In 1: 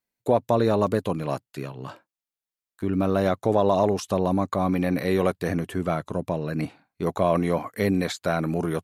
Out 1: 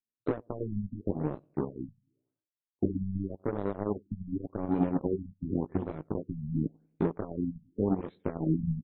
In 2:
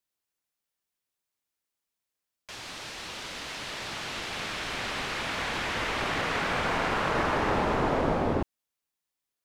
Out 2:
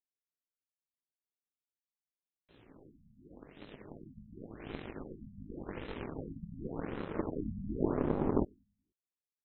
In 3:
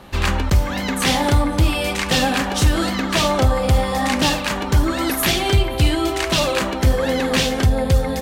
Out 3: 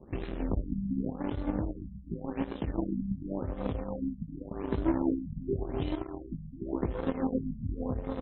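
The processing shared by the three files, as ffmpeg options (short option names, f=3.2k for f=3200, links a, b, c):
-filter_complex "[0:a]acrossover=split=650|4400[a][b][c];[a]alimiter=limit=-16dB:level=0:latency=1:release=169[d];[d][b][c]amix=inputs=3:normalize=0,acompressor=threshold=-31dB:ratio=12,lowshelf=f=580:t=q:w=1.5:g=12,flanger=delay=18:depth=2.1:speed=0.44,asoftclip=type=tanh:threshold=-19.5dB,equalizer=f=270:w=0.77:g=2.5,aecho=1:1:95|190|285|380|475:0.178|0.0978|0.0538|0.0296|0.0163,aeval=exprs='0.158*(cos(1*acos(clip(val(0)/0.158,-1,1)))-cos(1*PI/2))+0.00562*(cos(2*acos(clip(val(0)/0.158,-1,1)))-cos(2*PI/2))+0.0501*(cos(3*acos(clip(val(0)/0.158,-1,1)))-cos(3*PI/2))':c=same,afftfilt=real='re*lt(b*sr/1024,230*pow(4200/230,0.5+0.5*sin(2*PI*0.89*pts/sr)))':imag='im*lt(b*sr/1024,230*pow(4200/230,0.5+0.5*sin(2*PI*0.89*pts/sr)))':win_size=1024:overlap=0.75,volume=2dB"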